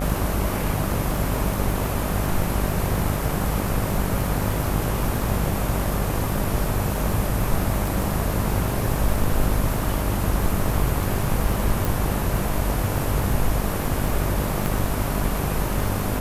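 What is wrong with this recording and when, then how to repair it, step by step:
buzz 50 Hz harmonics 25 -27 dBFS
crackle 34/s -26 dBFS
11.85 pop
14.66 pop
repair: de-click; de-hum 50 Hz, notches 25

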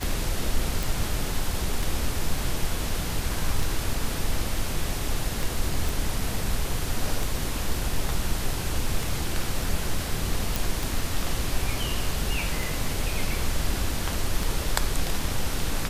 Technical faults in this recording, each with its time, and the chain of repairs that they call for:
tick 33 1/3 rpm
0.83 pop
5.89 pop
10.56 pop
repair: de-click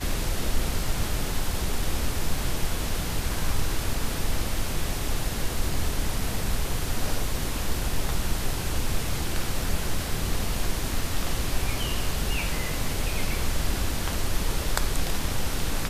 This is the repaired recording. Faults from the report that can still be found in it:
none

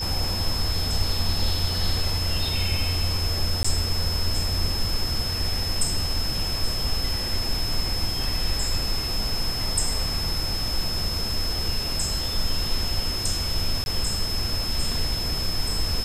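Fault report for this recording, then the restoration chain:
tone 5200 Hz -28 dBFS
3.63–3.65 gap 15 ms
13.84–13.86 gap 21 ms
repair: notch 5200 Hz, Q 30; interpolate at 3.63, 15 ms; interpolate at 13.84, 21 ms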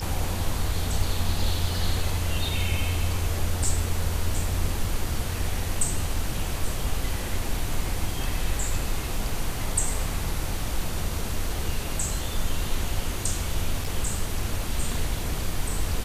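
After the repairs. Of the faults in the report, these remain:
none

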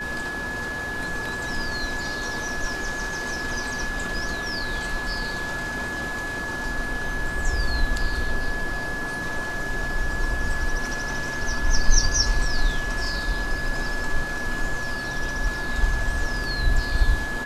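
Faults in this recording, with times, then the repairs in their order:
tone 1700 Hz -29 dBFS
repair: notch 1700 Hz, Q 30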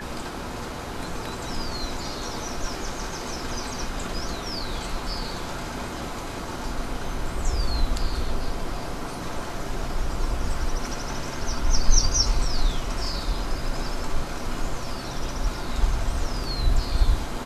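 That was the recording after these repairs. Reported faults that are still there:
none

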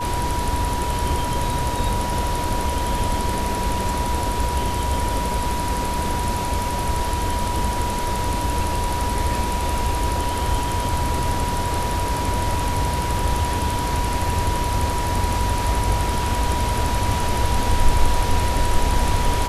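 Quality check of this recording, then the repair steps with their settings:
tone 970 Hz -25 dBFS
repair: notch 970 Hz, Q 30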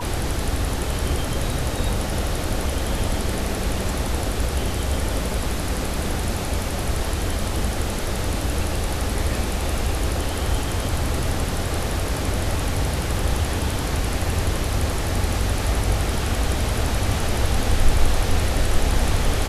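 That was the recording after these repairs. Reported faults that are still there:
none

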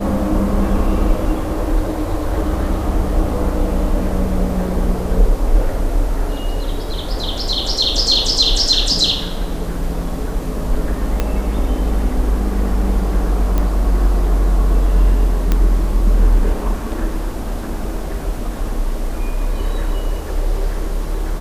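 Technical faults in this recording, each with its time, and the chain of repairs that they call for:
11.2 pop -5 dBFS
13.58 pop -7 dBFS
15.52 pop -4 dBFS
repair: de-click

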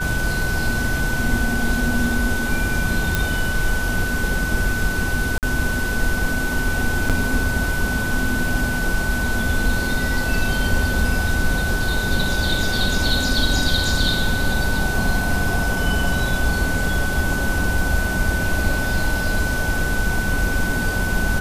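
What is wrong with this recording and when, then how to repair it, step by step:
tone 1500 Hz -24 dBFS
3.15 pop
5.38–5.43 gap 48 ms
7.09–7.1 gap 7.3 ms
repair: de-click; notch 1500 Hz, Q 30; interpolate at 5.38, 48 ms; interpolate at 7.09, 7.3 ms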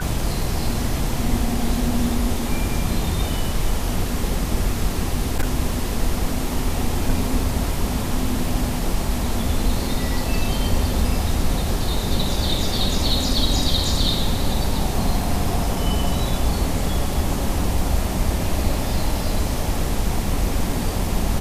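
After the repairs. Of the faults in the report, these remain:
none

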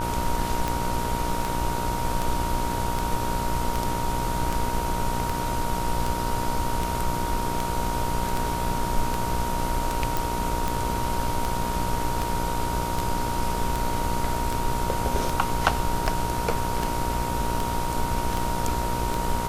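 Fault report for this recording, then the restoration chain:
buzz 60 Hz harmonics 25 -31 dBFS
tick 78 rpm
tone 940 Hz -29 dBFS
10.17 pop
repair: de-click; de-hum 60 Hz, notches 25; notch 940 Hz, Q 30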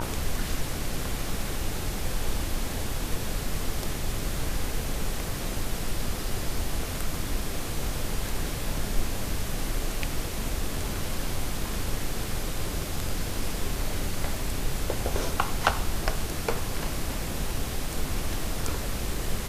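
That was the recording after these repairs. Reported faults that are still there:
none

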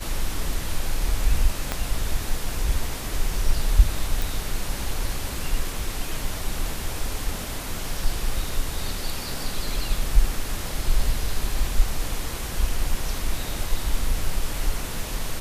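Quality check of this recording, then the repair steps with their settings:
1.72 pop -9 dBFS
4.22 pop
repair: de-click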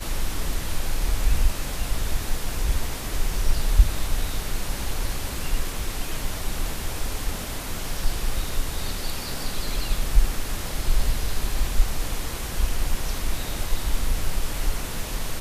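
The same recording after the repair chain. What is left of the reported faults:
1.72 pop

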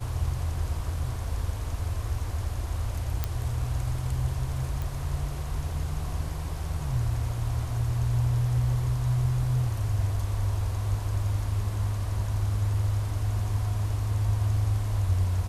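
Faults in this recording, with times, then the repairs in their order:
3.24 pop -13 dBFS
4.82 pop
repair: de-click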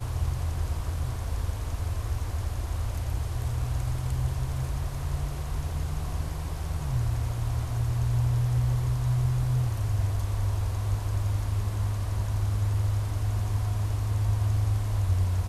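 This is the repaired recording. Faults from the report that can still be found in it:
none

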